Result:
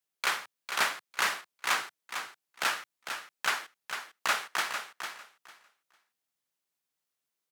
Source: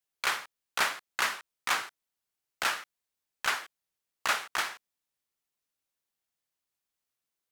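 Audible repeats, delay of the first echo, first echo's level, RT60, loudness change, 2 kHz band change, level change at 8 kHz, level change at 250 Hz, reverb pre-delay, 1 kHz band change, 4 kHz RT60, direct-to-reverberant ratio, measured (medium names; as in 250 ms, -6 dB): 2, 451 ms, -8.0 dB, no reverb, -1.0 dB, +0.5 dB, +0.5 dB, +0.5 dB, no reverb, +0.5 dB, no reverb, no reverb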